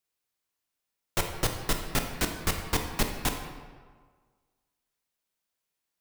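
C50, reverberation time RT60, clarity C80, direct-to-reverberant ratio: 6.0 dB, 1.6 s, 7.5 dB, 3.5 dB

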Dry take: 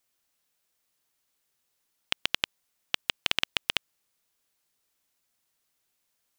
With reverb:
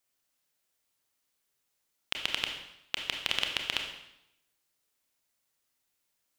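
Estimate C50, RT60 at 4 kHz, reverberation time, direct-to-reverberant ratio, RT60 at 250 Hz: 5.5 dB, 0.80 s, 0.85 s, 2.5 dB, 0.90 s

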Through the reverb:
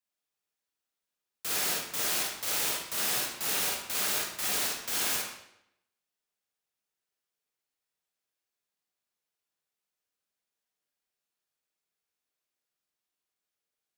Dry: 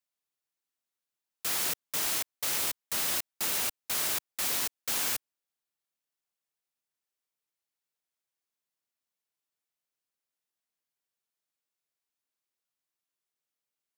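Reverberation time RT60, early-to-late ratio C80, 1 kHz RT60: 0.80 s, 5.0 dB, 0.80 s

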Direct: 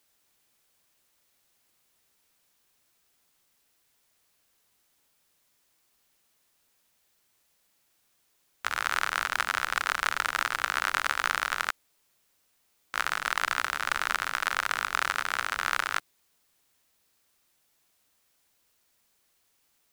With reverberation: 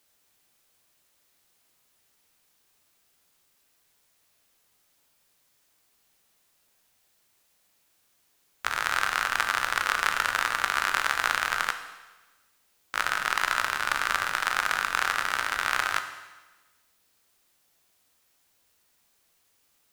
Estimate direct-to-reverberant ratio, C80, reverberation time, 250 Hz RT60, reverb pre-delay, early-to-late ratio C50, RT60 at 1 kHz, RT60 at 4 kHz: 6.5 dB, 10.5 dB, 1.2 s, 1.3 s, 10 ms, 9.0 dB, 1.2 s, 1.2 s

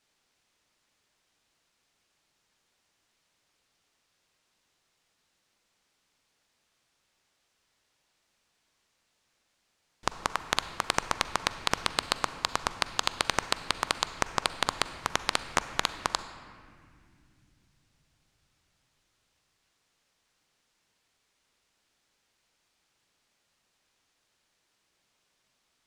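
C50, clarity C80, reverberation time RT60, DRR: 12.0 dB, 12.5 dB, 2.4 s, 11.5 dB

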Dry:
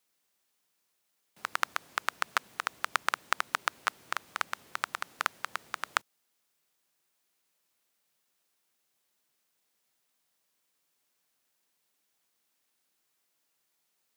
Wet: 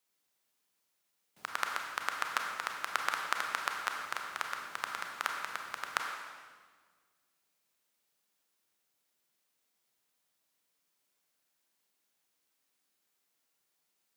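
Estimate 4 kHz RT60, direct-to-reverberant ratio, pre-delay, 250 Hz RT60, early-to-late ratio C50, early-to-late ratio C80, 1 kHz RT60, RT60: 1.4 s, 1.5 dB, 27 ms, 1.9 s, 3.0 dB, 4.5 dB, 1.5 s, 1.6 s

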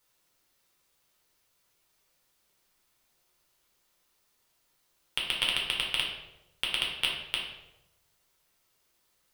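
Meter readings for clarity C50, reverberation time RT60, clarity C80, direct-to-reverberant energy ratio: 3.5 dB, 0.95 s, 7.0 dB, -3.0 dB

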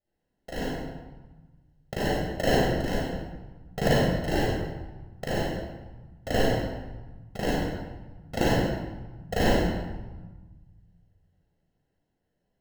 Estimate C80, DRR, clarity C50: -1.0 dB, -9.0 dB, -5.5 dB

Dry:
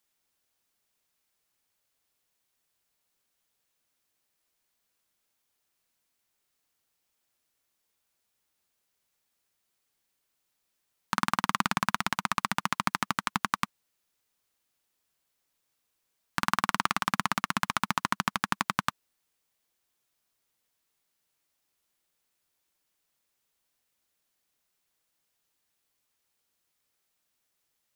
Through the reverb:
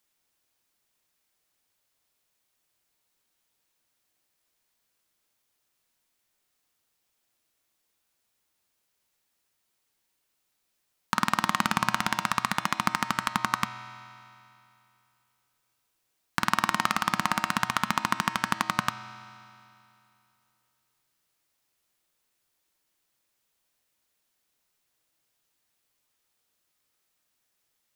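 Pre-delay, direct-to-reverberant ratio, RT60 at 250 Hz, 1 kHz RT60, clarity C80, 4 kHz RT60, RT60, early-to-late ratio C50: 3 ms, 10.0 dB, 2.7 s, 2.7 s, 12.0 dB, 2.6 s, 2.7 s, 11.0 dB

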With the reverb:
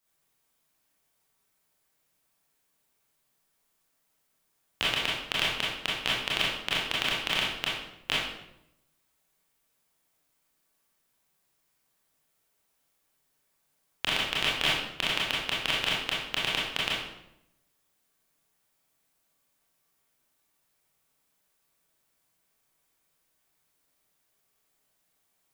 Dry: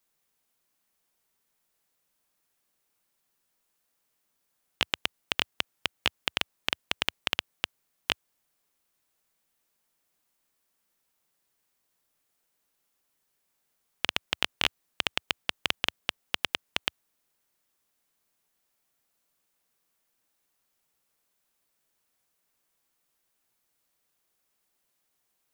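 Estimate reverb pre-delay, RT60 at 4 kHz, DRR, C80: 23 ms, 0.60 s, -6.5 dB, 4.5 dB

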